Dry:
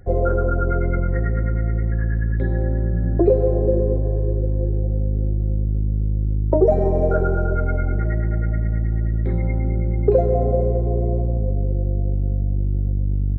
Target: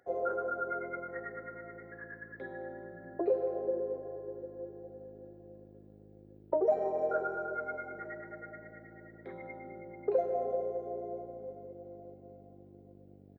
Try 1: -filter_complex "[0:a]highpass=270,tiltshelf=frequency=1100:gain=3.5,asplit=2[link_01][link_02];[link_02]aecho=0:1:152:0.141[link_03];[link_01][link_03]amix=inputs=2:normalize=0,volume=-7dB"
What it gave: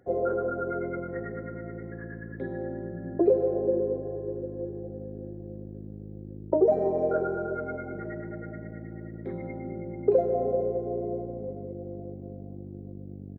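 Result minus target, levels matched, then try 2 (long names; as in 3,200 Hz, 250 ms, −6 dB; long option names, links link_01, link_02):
250 Hz band +6.0 dB
-filter_complex "[0:a]highpass=720,tiltshelf=frequency=1100:gain=3.5,asplit=2[link_01][link_02];[link_02]aecho=0:1:152:0.141[link_03];[link_01][link_03]amix=inputs=2:normalize=0,volume=-7dB"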